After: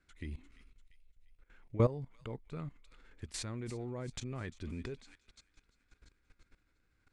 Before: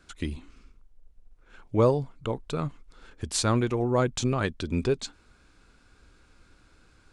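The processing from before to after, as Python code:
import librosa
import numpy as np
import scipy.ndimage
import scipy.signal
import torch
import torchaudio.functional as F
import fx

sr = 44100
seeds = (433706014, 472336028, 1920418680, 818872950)

y = fx.low_shelf(x, sr, hz=450.0, db=5.5)
y = fx.hpss(y, sr, part='percussive', gain_db=-5)
y = fx.peak_eq(y, sr, hz=2000.0, db=10.5, octaves=0.53)
y = fx.echo_wet_highpass(y, sr, ms=345, feedback_pct=55, hz=2800.0, wet_db=-11)
y = fx.level_steps(y, sr, step_db=17)
y = y * 10.0 ** (-6.5 / 20.0)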